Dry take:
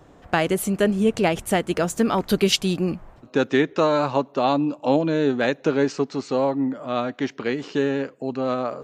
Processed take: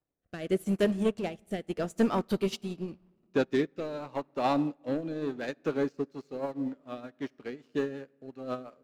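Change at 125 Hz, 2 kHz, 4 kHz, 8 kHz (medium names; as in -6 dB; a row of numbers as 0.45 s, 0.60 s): -10.0 dB, -13.0 dB, -15.5 dB, -18.0 dB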